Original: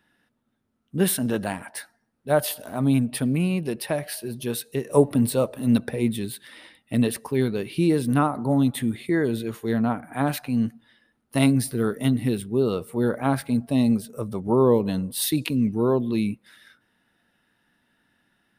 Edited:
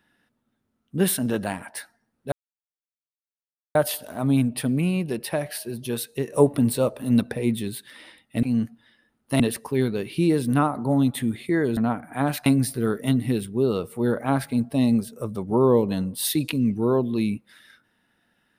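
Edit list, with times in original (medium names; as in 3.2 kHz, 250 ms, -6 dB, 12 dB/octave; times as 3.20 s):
2.32 s: insert silence 1.43 s
9.37–9.77 s: delete
10.46–11.43 s: move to 7.00 s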